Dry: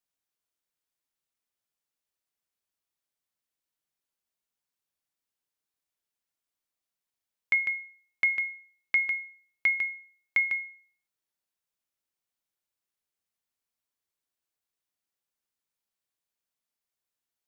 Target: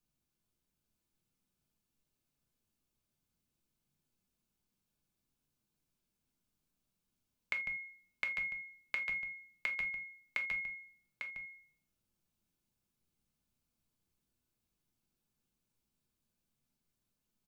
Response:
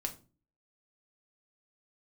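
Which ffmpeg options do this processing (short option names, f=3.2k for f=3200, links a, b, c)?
-filter_complex "[0:a]bandreject=f=1.9k:w=7.6,acrossover=split=280[a][b];[a]aeval=exprs='0.00708*sin(PI/2*4.47*val(0)/0.00708)':c=same[c];[b]acompressor=threshold=-34dB:ratio=6[d];[c][d]amix=inputs=2:normalize=0,aecho=1:1:849:0.473[e];[1:a]atrim=start_sample=2205,afade=t=out:st=0.14:d=0.01,atrim=end_sample=6615[f];[e][f]afir=irnorm=-1:irlink=0"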